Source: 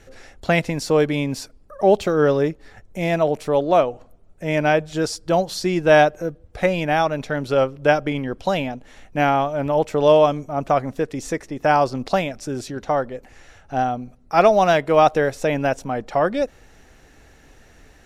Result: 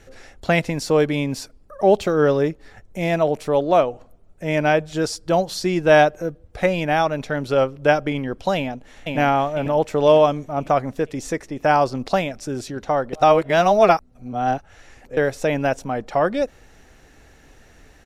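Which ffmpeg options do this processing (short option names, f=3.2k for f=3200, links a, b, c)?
-filter_complex "[0:a]asplit=2[a][b];[b]afade=t=in:st=8.56:d=0.01,afade=t=out:st=9.17:d=0.01,aecho=0:1:500|1000|1500|2000|2500|3000:0.749894|0.337452|0.151854|0.0683341|0.0307503|0.0138377[c];[a][c]amix=inputs=2:normalize=0,asplit=3[d][e][f];[d]atrim=end=13.132[g];[e]atrim=start=13.128:end=15.172,asetpts=PTS-STARTPTS,areverse[h];[f]atrim=start=15.168[i];[g][h]acrossfade=d=0.004:c1=hsin:c2=hsin[j];[j][i]acrossfade=d=0.004:c1=hsin:c2=hsin"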